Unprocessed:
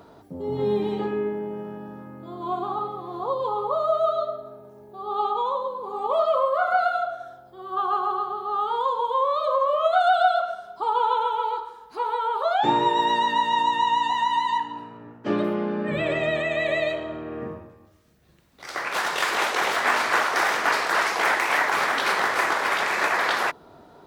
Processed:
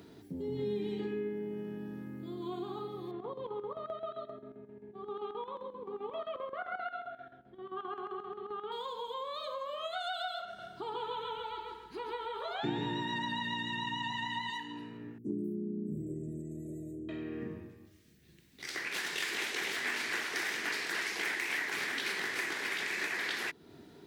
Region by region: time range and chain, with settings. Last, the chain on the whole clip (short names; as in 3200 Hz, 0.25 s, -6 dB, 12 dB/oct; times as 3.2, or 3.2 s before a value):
3.11–8.72 LPF 2700 Hz 24 dB/oct + comb 4.3 ms, depth 32% + chopper 7.6 Hz, depth 65%, duty 70%
10.45–14.5 tone controls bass +8 dB, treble -8 dB + feedback echo 0.138 s, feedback 30%, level -3 dB
15.18–17.09 inverse Chebyshev band-stop 910–4400 Hz, stop band 50 dB + bell 710 Hz -5 dB 2.1 oct
whole clip: HPF 100 Hz 6 dB/oct; band shelf 840 Hz -14 dB; compressor 2:1, threshold -39 dBFS